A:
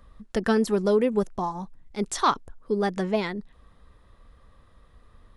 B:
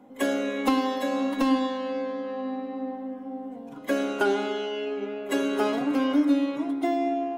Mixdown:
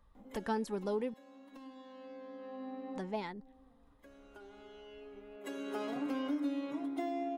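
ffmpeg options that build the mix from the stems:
ffmpeg -i stem1.wav -i stem2.wav -filter_complex "[0:a]equalizer=frequency=870:width=7.9:gain=12,volume=-14dB,asplit=3[link_01][link_02][link_03];[link_01]atrim=end=1.14,asetpts=PTS-STARTPTS,afade=type=out:start_time=1.136:duration=0.004:curve=hsin[link_04];[link_02]atrim=start=1.14:end=2.95,asetpts=PTS-STARTPTS,volume=0[link_05];[link_03]atrim=start=2.95,asetpts=PTS-STARTPTS,afade=type=in:duration=0.004:curve=hsin[link_06];[link_04][link_05][link_06]concat=n=3:v=0:a=1,asplit=2[link_07][link_08];[1:a]acompressor=threshold=-30dB:ratio=2,adelay=150,volume=4.5dB,afade=type=out:start_time=3.29:duration=0.69:silence=0.266073,afade=type=in:start_time=5.27:duration=0.69:silence=0.266073[link_09];[link_08]apad=whole_len=332023[link_10];[link_09][link_10]sidechaincompress=threshold=-53dB:ratio=12:attack=31:release=1380[link_11];[link_07][link_11]amix=inputs=2:normalize=0" out.wav

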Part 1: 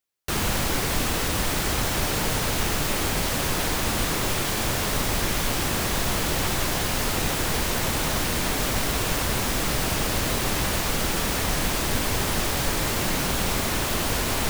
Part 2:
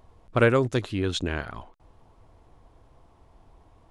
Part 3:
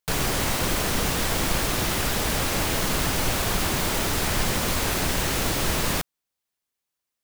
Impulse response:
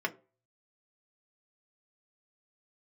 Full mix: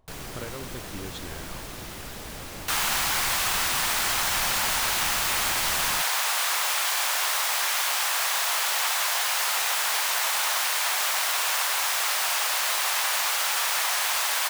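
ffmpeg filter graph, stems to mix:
-filter_complex "[0:a]highpass=frequency=780:width=0.5412,highpass=frequency=780:width=1.3066,adelay=2400,volume=2.5dB[link_01];[1:a]acompressor=threshold=-27dB:ratio=6,volume=-8.5dB[link_02];[2:a]volume=-13.5dB[link_03];[link_01][link_02][link_03]amix=inputs=3:normalize=0"

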